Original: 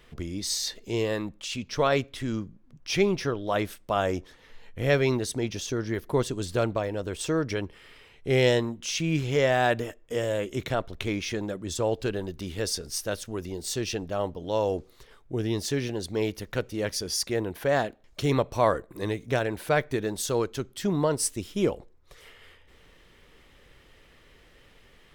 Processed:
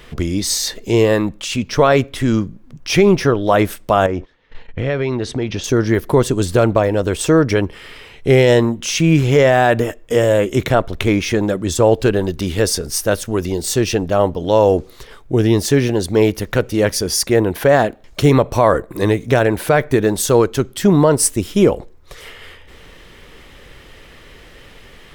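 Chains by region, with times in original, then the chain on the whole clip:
0:04.06–0:05.64: noise gate −46 dBFS, range −18 dB + low-pass filter 3,600 Hz + downward compressor 4 to 1, threshold −31 dBFS
whole clip: dynamic equaliser 4,200 Hz, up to −6 dB, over −45 dBFS, Q 0.76; boost into a limiter +15.5 dB; level −1 dB

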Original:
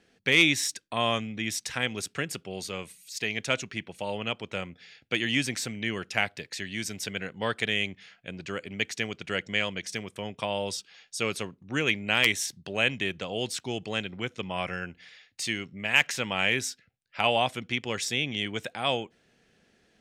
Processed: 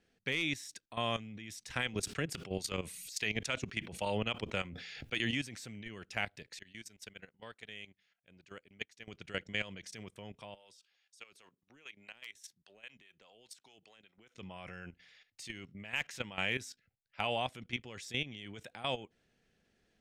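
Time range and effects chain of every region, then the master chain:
0:01.70–0:05.31: two-band tremolo in antiphase 3.6 Hz, depth 50%, crossover 770 Hz + envelope flattener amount 70%
0:06.59–0:09.08: low-shelf EQ 260 Hz −5.5 dB + output level in coarse steps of 9 dB + expander for the loud parts, over −48 dBFS
0:10.54–0:14.35: high-pass filter 790 Hz 6 dB per octave + downward compressor 2.5 to 1, threshold −40 dBFS + two-band tremolo in antiphase 4.9 Hz, crossover 570 Hz
whole clip: output level in coarse steps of 14 dB; low-shelf EQ 74 Hz +11 dB; level −6 dB

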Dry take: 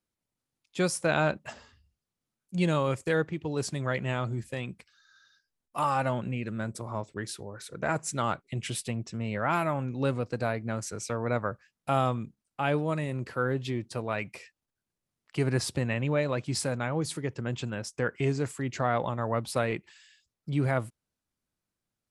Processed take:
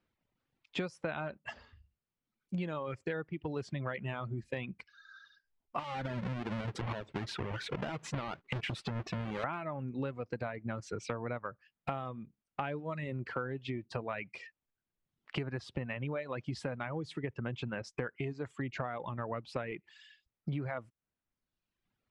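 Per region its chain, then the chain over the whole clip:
0:05.79–0:09.44: each half-wave held at its own peak + downward compressor 12 to 1, threshold −34 dBFS
whole clip: reverb reduction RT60 0.98 s; Chebyshev low-pass filter 2,600 Hz, order 2; downward compressor 16 to 1, threshold −42 dBFS; level +8.5 dB

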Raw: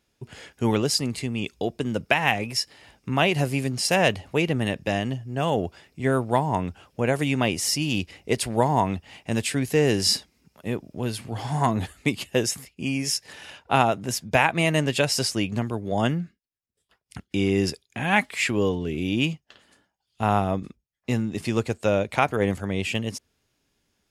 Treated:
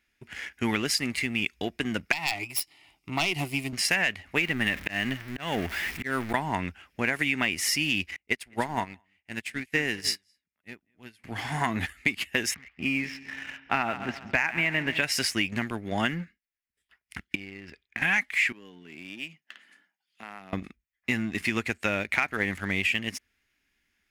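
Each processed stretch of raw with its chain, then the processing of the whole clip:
0:02.12–0:03.73: phase distortion by the signal itself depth 0.19 ms + parametric band 6,200 Hz −4.5 dB 0.31 octaves + phaser with its sweep stopped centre 330 Hz, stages 8
0:04.37–0:06.34: converter with a step at zero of −33 dBFS + volume swells 211 ms
0:08.16–0:11.24: single-tap delay 208 ms −14.5 dB + expander for the loud parts 2.5 to 1, over −35 dBFS
0:12.54–0:15.02: Gaussian smoothing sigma 2.6 samples + echo with a time of its own for lows and highs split 540 Hz, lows 214 ms, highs 138 ms, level −15 dB
0:17.35–0:18.02: low-pass filter 2,700 Hz + downward compressor 10 to 1, threshold −34 dBFS
0:18.52–0:20.53: downward compressor 3 to 1, threshold −40 dBFS + high-pass filter 150 Hz 24 dB per octave
whole clip: graphic EQ with 10 bands 125 Hz −12 dB, 500 Hz −11 dB, 1,000 Hz −5 dB, 2,000 Hz +12 dB, 4,000 Hz −4 dB, 8,000 Hz −5 dB; leveller curve on the samples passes 1; downward compressor 6 to 1, threshold −22 dBFS

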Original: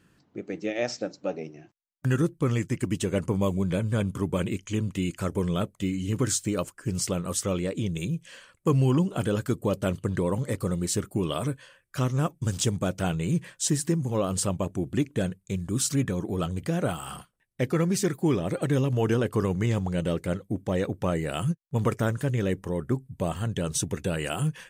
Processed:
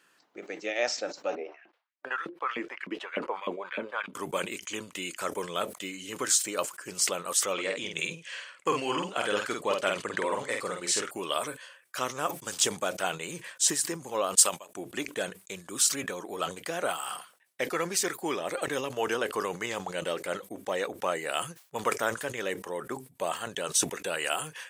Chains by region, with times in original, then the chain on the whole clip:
0:01.35–0:04.14: high-frequency loss of the air 370 metres + auto-filter high-pass saw up 3.3 Hz 200–2,300 Hz
0:07.53–0:11.11: low-pass filter 7,900 Hz + parametric band 2,200 Hz +5 dB 1.1 octaves + double-tracking delay 49 ms −4 dB
0:14.35–0:14.75: spectral tilt +2.5 dB per octave + expander for the loud parts 2.5 to 1, over −36 dBFS
whole clip: high-pass filter 670 Hz 12 dB per octave; level that may fall only so fast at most 150 dB per second; level +3.5 dB

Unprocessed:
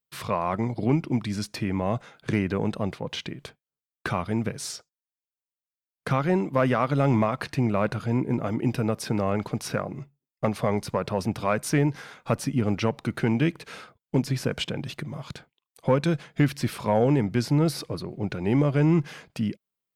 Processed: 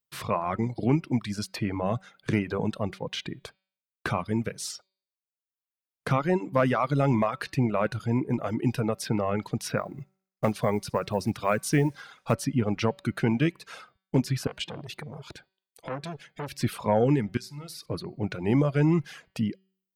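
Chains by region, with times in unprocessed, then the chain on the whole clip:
0:09.77–0:12.33: floating-point word with a short mantissa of 4 bits + delay with a high-pass on its return 60 ms, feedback 63%, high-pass 4,000 Hz, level −12.5 dB
0:14.47–0:16.52: notch filter 1,100 Hz, Q 5.5 + downward compressor 2 to 1, threshold −28 dBFS + saturating transformer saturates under 1,200 Hz
0:17.37–0:17.86: guitar amp tone stack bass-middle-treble 5-5-5 + flutter between parallel walls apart 10.7 metres, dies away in 0.39 s
whole clip: hum removal 190.2 Hz, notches 26; reverb reduction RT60 0.91 s

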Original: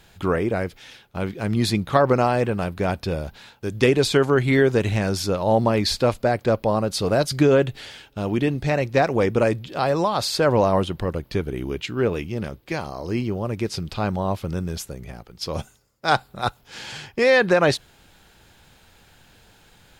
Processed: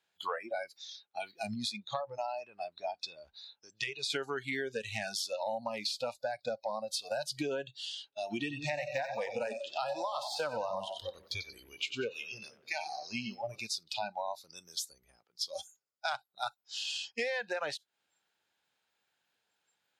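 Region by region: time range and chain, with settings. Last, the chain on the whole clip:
0:01.54–0:04.10: low-pass filter 11,000 Hz + high-shelf EQ 5,500 Hz −4 dB + downward compressor 1.5 to 1, threshold −31 dBFS
0:08.21–0:13.60: de-essing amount 65% + echo with a time of its own for lows and highs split 500 Hz, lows 154 ms, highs 92 ms, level −7 dB
whole clip: noise reduction from a noise print of the clip's start 27 dB; meter weighting curve A; downward compressor 10 to 1, threshold −34 dBFS; level +1.5 dB

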